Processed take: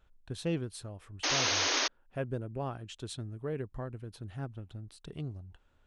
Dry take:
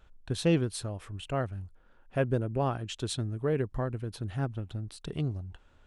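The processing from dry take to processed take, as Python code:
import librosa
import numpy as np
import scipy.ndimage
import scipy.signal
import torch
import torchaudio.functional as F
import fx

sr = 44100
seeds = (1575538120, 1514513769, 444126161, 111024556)

y = fx.spec_paint(x, sr, seeds[0], shape='noise', start_s=1.23, length_s=0.65, low_hz=250.0, high_hz=6700.0, level_db=-22.0)
y = y * 10.0 ** (-7.5 / 20.0)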